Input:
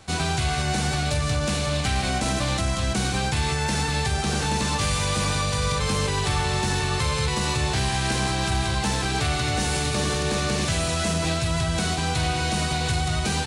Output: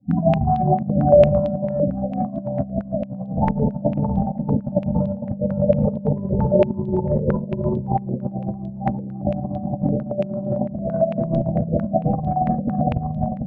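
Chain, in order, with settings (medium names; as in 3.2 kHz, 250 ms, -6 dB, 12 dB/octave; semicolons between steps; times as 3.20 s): fade-in on the opening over 0.52 s; peaking EQ 210 Hz +8 dB 2.7 oct; small resonant body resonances 210/570 Hz, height 16 dB, ringing for 25 ms; hard clipper -9.5 dBFS, distortion -9 dB; loudest bins only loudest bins 8; peak limiter -17.5 dBFS, peak gain reduction 12 dB; 8.69–9.58 s: high-pass 41 Hz; echo that smears into a reverb 542 ms, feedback 69%, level -9.5 dB; Schroeder reverb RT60 0.58 s, combs from 31 ms, DRR -0.5 dB; compressor with a negative ratio -23 dBFS, ratio -0.5; step-sequenced low-pass 8.9 Hz 480–3500 Hz; trim +1 dB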